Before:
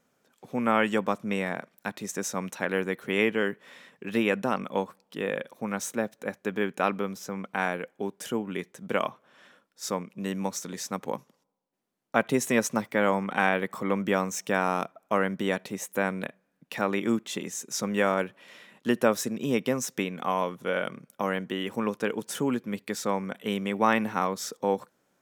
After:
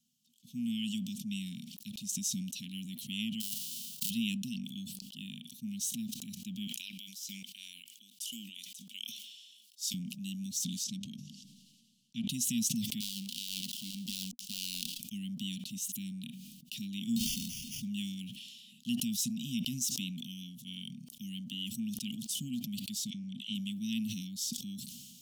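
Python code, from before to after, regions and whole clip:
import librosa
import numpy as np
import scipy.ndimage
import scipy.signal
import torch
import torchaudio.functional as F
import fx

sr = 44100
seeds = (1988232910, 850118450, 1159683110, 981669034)

y = fx.envelope_flatten(x, sr, power=0.1, at=(3.4, 4.09), fade=0.02)
y = fx.over_compress(y, sr, threshold_db=-40.0, ratio=-1.0, at=(3.4, 4.09), fade=0.02)
y = fx.chain(y, sr, fx.highpass(hz=890.0, slope=12),
    fx.sustainer(db_per_s=93.0), at=(6.67, 9.94))
y = fx.chain(y, sr, fx.air_absorb(metres=57.0),
    fx.hum_notches(base_hz=50, count=7), at=(10.84, 12.28))
y = fx.chain(y, sr, fx.dead_time(dead_ms=0.19),
    fx.peak_eq(hz=98.0, db=-12.5, octaves=2.4),
    fx.over_compress(threshold_db=-29.0, ratio=-0.5), at=(13.0, 15.0))
y = fx.chain(y, sr, fx.delta_mod(bps=64000, step_db=-33.5),
    fx.sample_hold(seeds[0], rate_hz=4000.0, jitter_pct=0),
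    fx.band_squash(depth_pct=70), at=(17.16, 17.82))
y = fx.chain(y, sr, fx.lowpass(hz=5600.0, slope=12),
    fx.dispersion(late='lows', ms=41.0, hz=840.0), at=(23.1, 23.55))
y = scipy.signal.sosfilt(scipy.signal.cheby1(5, 1.0, [240.0, 2900.0], 'bandstop', fs=sr, output='sos'), y)
y = fx.low_shelf(y, sr, hz=220.0, db=-10.5)
y = fx.sustainer(y, sr, db_per_s=33.0)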